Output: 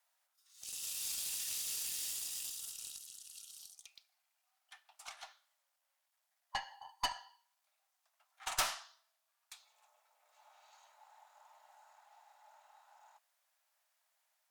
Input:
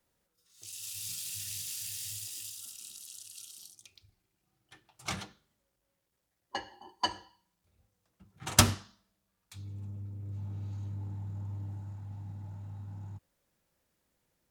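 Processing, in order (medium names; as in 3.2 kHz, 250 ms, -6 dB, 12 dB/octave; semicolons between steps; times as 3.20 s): steep high-pass 630 Hz 72 dB/octave; 2.96–5.23 s: compression 5:1, threshold -49 dBFS, peak gain reduction 15.5 dB; valve stage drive 29 dB, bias 0.4; trim +1.5 dB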